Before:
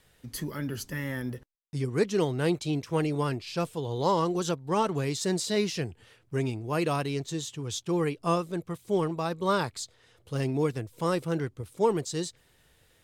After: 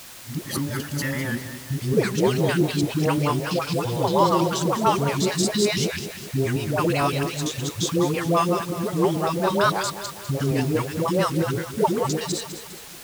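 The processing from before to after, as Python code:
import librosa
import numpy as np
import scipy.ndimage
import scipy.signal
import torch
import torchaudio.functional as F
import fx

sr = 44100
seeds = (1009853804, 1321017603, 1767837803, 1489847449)

y = fx.local_reverse(x, sr, ms=113.0)
y = scipy.signal.sosfilt(scipy.signal.butter(4, 77.0, 'highpass', fs=sr, output='sos'), y)
y = fx.peak_eq(y, sr, hz=240.0, db=-2.0, octaves=2.4)
y = fx.dispersion(y, sr, late='highs', ms=119.0, hz=560.0)
y = fx.quant_dither(y, sr, seeds[0], bits=8, dither='triangular')
y = fx.high_shelf(y, sr, hz=11000.0, db=-4.5)
y = fx.notch(y, sr, hz=450.0, q=12.0)
y = fx.echo_feedback(y, sr, ms=203, feedback_pct=48, wet_db=-11)
y = fx.record_warp(y, sr, rpm=78.0, depth_cents=100.0)
y = F.gain(torch.from_numpy(y), 8.0).numpy()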